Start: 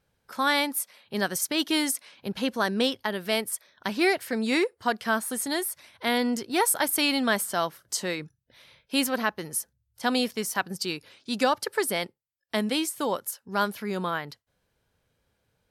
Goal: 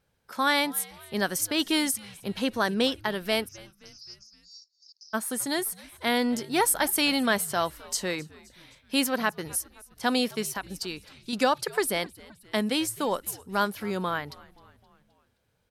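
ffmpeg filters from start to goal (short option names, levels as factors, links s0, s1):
-filter_complex "[0:a]asplit=3[s0][s1][s2];[s0]afade=t=out:st=3.47:d=0.02[s3];[s1]asuperpass=centerf=5600:order=8:qfactor=3.4,afade=t=in:st=3.47:d=0.02,afade=t=out:st=5.13:d=0.02[s4];[s2]afade=t=in:st=5.13:d=0.02[s5];[s3][s4][s5]amix=inputs=3:normalize=0,asettb=1/sr,asplit=3[s6][s7][s8];[s6]atrim=end=10.454[s9];[s7]atrim=start=10.45:end=11.33,asetpts=PTS-STARTPTS,afade=t=in:d=0.004:c=qsin,afade=t=out:st=0.876:d=0.004:c=qsin,acompressor=threshold=0.0316:ratio=6[s10];[s8]atrim=start=11.326[s11];[s9][s10]acrossfade=d=0.004:c1=hsin:c2=qsin[s12];[s12][s11]acrossfade=d=0.004:c1=qsin:c2=hsin,asplit=5[s13][s14][s15][s16][s17];[s14]adelay=261,afreqshift=-99,volume=0.0794[s18];[s15]adelay=522,afreqshift=-198,volume=0.0437[s19];[s16]adelay=783,afreqshift=-297,volume=0.024[s20];[s17]adelay=1044,afreqshift=-396,volume=0.0132[s21];[s13][s18][s19][s20][s21]amix=inputs=5:normalize=0"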